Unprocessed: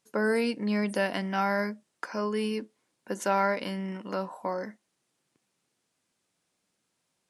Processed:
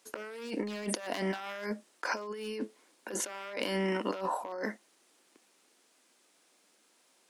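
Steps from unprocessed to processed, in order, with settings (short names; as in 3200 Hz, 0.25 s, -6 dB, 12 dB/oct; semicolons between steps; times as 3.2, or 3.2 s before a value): one-sided fold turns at -22 dBFS; HPF 260 Hz 24 dB/oct; negative-ratio compressor -41 dBFS, ratio -1; gain +4 dB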